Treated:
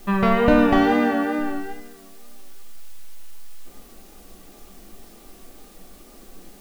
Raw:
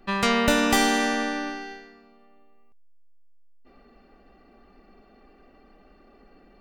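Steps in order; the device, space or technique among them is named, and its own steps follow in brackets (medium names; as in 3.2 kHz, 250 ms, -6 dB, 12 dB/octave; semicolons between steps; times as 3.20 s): 0.75–1.39 s: high-pass 63 Hz; cassette deck with a dirty head (tape spacing loss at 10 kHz 45 dB; wow and flutter 47 cents; white noise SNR 27 dB); simulated room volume 140 m³, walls furnished, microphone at 0.79 m; trim +6.5 dB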